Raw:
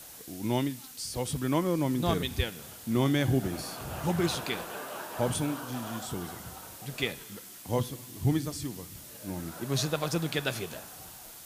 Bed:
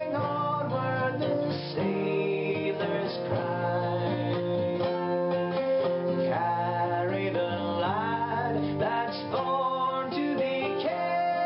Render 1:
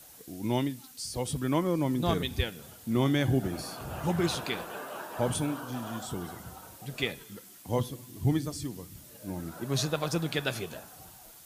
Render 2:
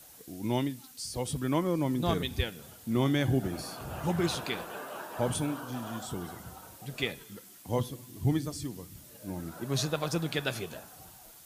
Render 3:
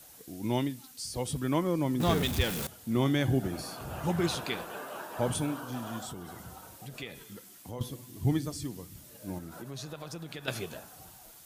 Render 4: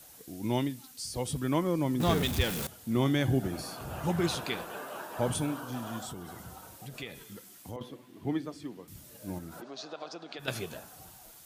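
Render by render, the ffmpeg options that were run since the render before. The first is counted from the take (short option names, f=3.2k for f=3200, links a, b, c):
-af "afftdn=nr=6:nf=-48"
-af "volume=-1dB"
-filter_complex "[0:a]asettb=1/sr,asplit=3[a][b][c];[a]atrim=end=2.004[d];[b]atrim=start=2:end=2.67,asetpts=PTS-STARTPTS,afade=t=in:d=0.004:c=qsin,afade=t=out:st=0.666:d=0.004:c=qsin,aeval=exprs='val(0)+0.5*0.0316*sgn(val(0))':c=same[e];[c]atrim=start=2.666[f];[d][e]acrossfade=d=0.004:c1=hsin:c2=qsin[g];[g][f]acrossfade=d=0.004:c1=qsin:c2=hsin,asettb=1/sr,asplit=3[h][i][j];[h]atrim=end=6.104[k];[i]atrim=start=6.1:end=7.81,asetpts=PTS-STARTPTS,afade=t=in:d=0.004:c=qsin,afade=t=out:st=1.706:d=0.004:c=qsin,acompressor=threshold=-40dB:ratio=2.5:attack=3.2:release=140:knee=1:detection=peak[l];[j]atrim=start=7.806[m];[k][l]acrossfade=d=0.004:c1=hsin:c2=qsin[n];[n][m]acrossfade=d=0.004:c1=qsin:c2=hsin,asettb=1/sr,asplit=3[o][p][q];[o]atrim=end=9.384[r];[p]atrim=start=9.38:end=10.48,asetpts=PTS-STARTPTS,afade=t=in:d=0.004:c=qsin,afade=t=out:st=1.096:d=0.004:c=qsin,acompressor=threshold=-39dB:ratio=4:attack=3.2:release=140:knee=1:detection=peak[s];[q]atrim=start=10.476[t];[r][s]acrossfade=d=0.004:c1=hsin:c2=qsin[u];[u][t]acrossfade=d=0.004:c1=qsin:c2=hsin"
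-filter_complex "[0:a]asettb=1/sr,asplit=3[a][b][c];[a]atrim=end=7.764[d];[b]atrim=start=7.76:end=8.88,asetpts=PTS-STARTPTS,afade=t=in:d=0.004:c=qsin,afade=t=out:st=1.116:d=0.004:c=qsin,acrossover=split=200 3400:gain=0.112 1 0.158[e][f][g];[e][f][g]amix=inputs=3:normalize=0[h];[c]atrim=start=8.876[i];[d][h]acrossfade=d=0.004:c1=hsin:c2=qsin[j];[j][i]acrossfade=d=0.004:c1=qsin:c2=hsin,asplit=3[k][l][m];[k]afade=t=out:st=9.6:d=0.02[n];[l]highpass=f=250:w=0.5412,highpass=f=250:w=1.3066,equalizer=f=710:t=q:w=4:g=8,equalizer=f=1.3k:t=q:w=4:g=3,equalizer=f=1.9k:t=q:w=4:g=-3,equalizer=f=4.6k:t=q:w=4:g=4,lowpass=f=5.8k:w=0.5412,lowpass=f=5.8k:w=1.3066,afade=t=in:st=9.6:d=0.02,afade=t=out:st=10.38:d=0.02[o];[m]afade=t=in:st=10.38:d=0.02[p];[n][o][p]amix=inputs=3:normalize=0"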